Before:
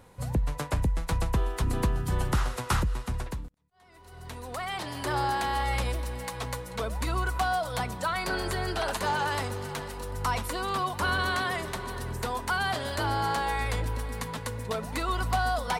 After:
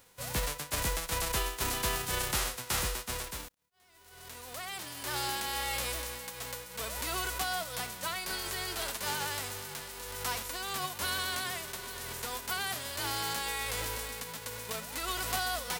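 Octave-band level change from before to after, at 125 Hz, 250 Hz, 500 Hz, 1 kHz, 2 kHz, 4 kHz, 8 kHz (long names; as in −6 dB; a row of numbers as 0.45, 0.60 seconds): −12.0, −10.0, −7.0, −8.0, −4.0, +1.5, +6.0 decibels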